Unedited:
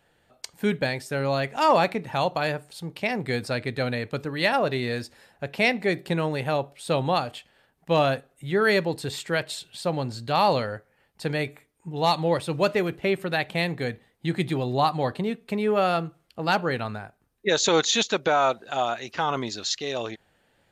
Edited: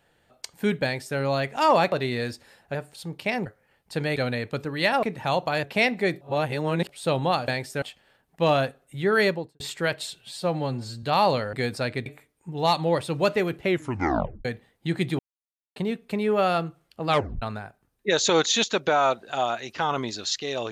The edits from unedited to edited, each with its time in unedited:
0:00.84–0:01.18: duplicate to 0:07.31
0:01.92–0:02.52: swap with 0:04.63–0:05.46
0:03.23–0:03.76: swap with 0:10.75–0:11.45
0:06.04–0:06.72: reverse
0:08.72–0:09.09: fade out and dull
0:09.71–0:10.25: time-stretch 1.5×
0:13.06: tape stop 0.78 s
0:14.58–0:15.15: silence
0:16.47: tape stop 0.34 s

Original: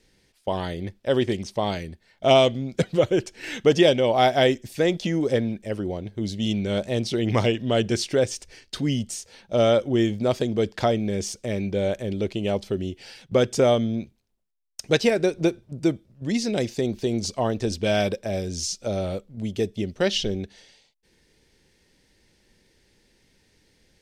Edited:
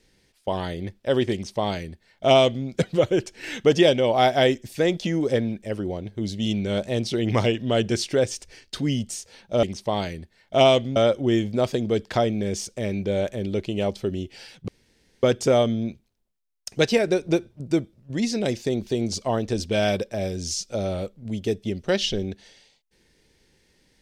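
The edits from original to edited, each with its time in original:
0:01.33–0:02.66: duplicate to 0:09.63
0:13.35: splice in room tone 0.55 s

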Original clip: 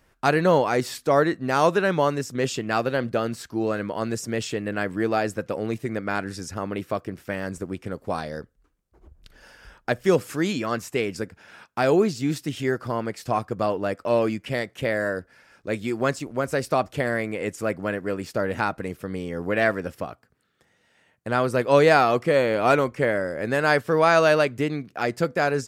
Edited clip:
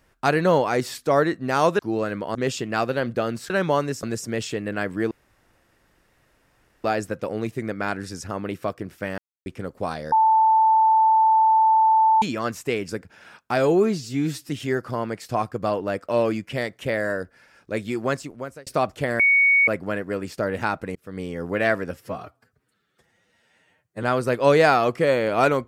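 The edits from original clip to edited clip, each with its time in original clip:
0:01.79–0:02.32: swap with 0:03.47–0:04.03
0:05.11: splice in room tone 1.73 s
0:07.45–0:07.73: silence
0:08.39–0:10.49: beep over 883 Hz −13.5 dBFS
0:11.85–0:12.46: time-stretch 1.5×
0:15.81–0:16.63: fade out equal-power
0:17.16–0:17.64: beep over 2,230 Hz −13.5 dBFS
0:18.92–0:19.18: fade in
0:19.91–0:21.30: time-stretch 1.5×

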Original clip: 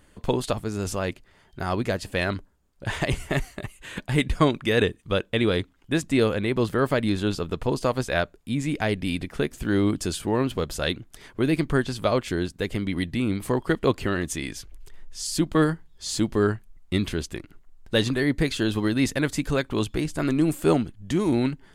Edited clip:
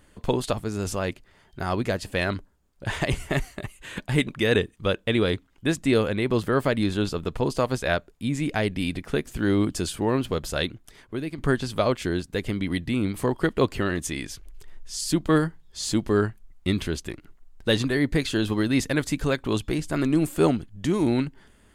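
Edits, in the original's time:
0:04.27–0:04.53: remove
0:10.83–0:11.64: fade out, to −12.5 dB

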